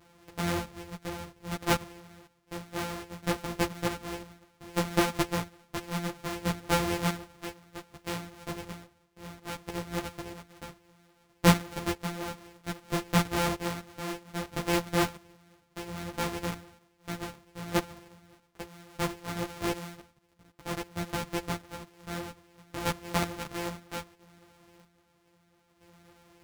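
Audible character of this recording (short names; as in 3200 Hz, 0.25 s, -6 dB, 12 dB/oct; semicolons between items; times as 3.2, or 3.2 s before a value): a buzz of ramps at a fixed pitch in blocks of 256 samples; chopped level 0.62 Hz, depth 65%, duty 40%; a shimmering, thickened sound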